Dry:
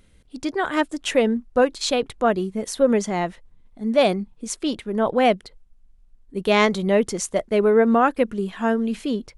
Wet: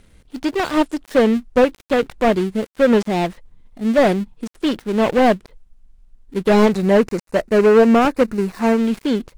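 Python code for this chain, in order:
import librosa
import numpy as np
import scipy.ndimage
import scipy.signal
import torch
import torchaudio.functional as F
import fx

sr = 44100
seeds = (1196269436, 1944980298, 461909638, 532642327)

y = fx.dead_time(x, sr, dead_ms=0.2)
y = fx.peak_eq(y, sr, hz=3200.0, db=-14.5, octaves=0.23, at=(6.72, 8.78))
y = fx.slew_limit(y, sr, full_power_hz=130.0)
y = y * 10.0 ** (5.5 / 20.0)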